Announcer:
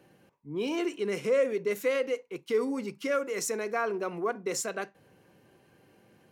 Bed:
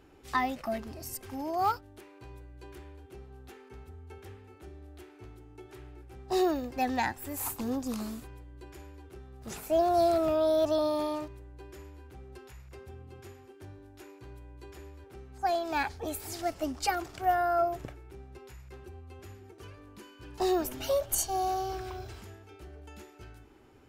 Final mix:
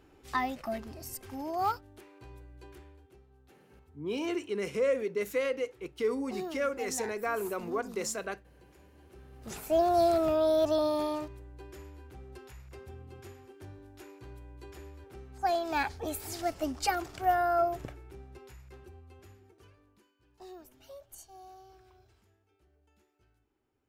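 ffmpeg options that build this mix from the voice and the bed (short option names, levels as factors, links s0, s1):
-filter_complex "[0:a]adelay=3500,volume=0.75[s0];[1:a]volume=3.16,afade=t=out:st=2.58:d=0.64:silence=0.316228,afade=t=in:st=8.91:d=0.71:silence=0.251189,afade=t=out:st=18:d=2.14:silence=0.0891251[s1];[s0][s1]amix=inputs=2:normalize=0"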